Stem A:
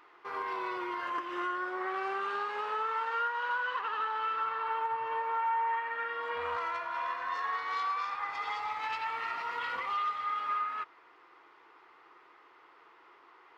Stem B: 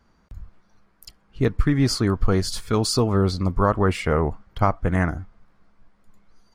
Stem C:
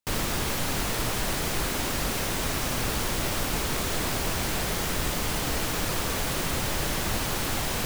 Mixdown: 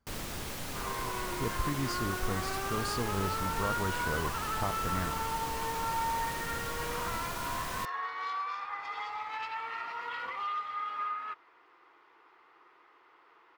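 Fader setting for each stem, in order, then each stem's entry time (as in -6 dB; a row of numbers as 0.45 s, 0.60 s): -2.5 dB, -15.0 dB, -11.0 dB; 0.50 s, 0.00 s, 0.00 s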